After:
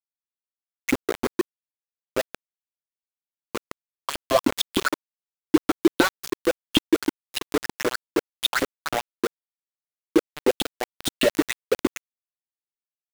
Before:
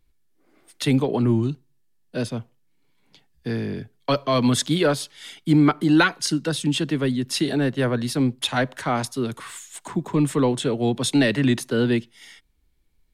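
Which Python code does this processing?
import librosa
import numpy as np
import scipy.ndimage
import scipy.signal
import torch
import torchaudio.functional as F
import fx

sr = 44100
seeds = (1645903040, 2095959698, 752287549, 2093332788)

y = fx.echo_thinned(x, sr, ms=169, feedback_pct=48, hz=900.0, wet_db=-15.5)
y = fx.filter_lfo_highpass(y, sr, shape='saw_up', hz=6.5, low_hz=270.0, high_hz=3400.0, q=7.6)
y = np.where(np.abs(y) >= 10.0 ** (-14.5 / 20.0), y, 0.0)
y = F.gain(torch.from_numpy(y), -5.0).numpy()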